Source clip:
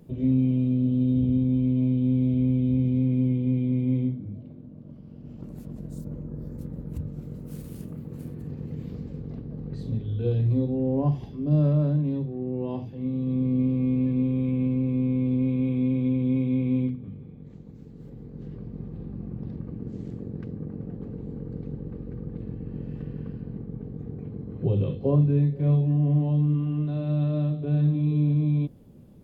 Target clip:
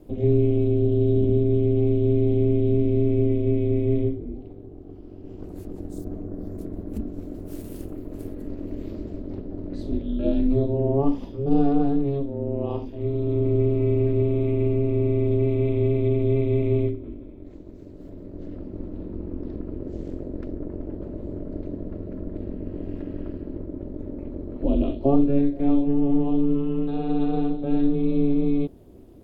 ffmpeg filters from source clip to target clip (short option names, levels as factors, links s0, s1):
-af "aeval=exprs='val(0)*sin(2*PI*140*n/s)':c=same,volume=2"